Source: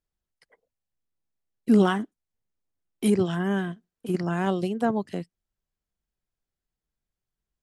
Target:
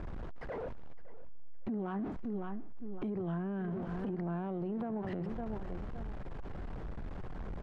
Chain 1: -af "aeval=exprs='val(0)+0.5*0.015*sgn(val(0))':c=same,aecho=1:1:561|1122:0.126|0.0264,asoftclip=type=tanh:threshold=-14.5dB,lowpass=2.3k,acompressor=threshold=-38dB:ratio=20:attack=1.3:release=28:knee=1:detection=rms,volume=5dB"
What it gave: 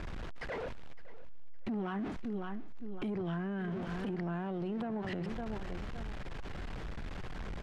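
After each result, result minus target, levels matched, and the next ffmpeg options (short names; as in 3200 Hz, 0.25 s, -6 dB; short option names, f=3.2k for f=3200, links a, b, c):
soft clip: distortion +16 dB; 2000 Hz band +6.5 dB
-af "aeval=exprs='val(0)+0.5*0.015*sgn(val(0))':c=same,aecho=1:1:561|1122:0.126|0.0264,asoftclip=type=tanh:threshold=-5dB,lowpass=2.3k,acompressor=threshold=-38dB:ratio=20:attack=1.3:release=28:knee=1:detection=rms,volume=5dB"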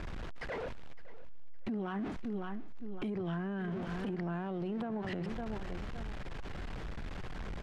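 2000 Hz band +6.5 dB
-af "aeval=exprs='val(0)+0.5*0.015*sgn(val(0))':c=same,aecho=1:1:561|1122:0.126|0.0264,asoftclip=type=tanh:threshold=-5dB,lowpass=1.1k,acompressor=threshold=-38dB:ratio=20:attack=1.3:release=28:knee=1:detection=rms,volume=5dB"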